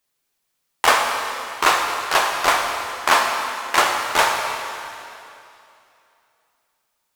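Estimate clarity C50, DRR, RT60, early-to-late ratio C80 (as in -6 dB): 3.0 dB, 1.0 dB, 2.7 s, 4.0 dB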